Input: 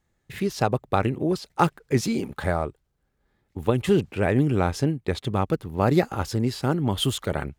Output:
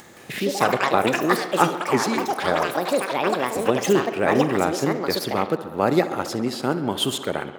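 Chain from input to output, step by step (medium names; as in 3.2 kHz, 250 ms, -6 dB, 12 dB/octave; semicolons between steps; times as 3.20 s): high-pass 230 Hz 12 dB/octave; upward compressor, threshold -28 dBFS; tape echo 66 ms, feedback 87%, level -13.5 dB, low-pass 5.1 kHz; ever faster or slower copies 169 ms, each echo +6 st, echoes 3; trim +2.5 dB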